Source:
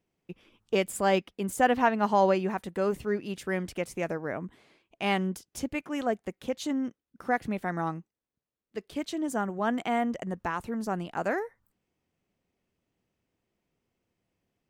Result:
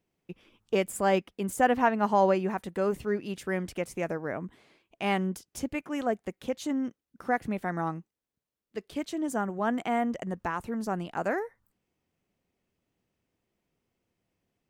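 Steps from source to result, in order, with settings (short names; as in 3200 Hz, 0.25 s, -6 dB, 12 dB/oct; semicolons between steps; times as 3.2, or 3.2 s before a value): dynamic EQ 3900 Hz, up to -5 dB, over -46 dBFS, Q 1.2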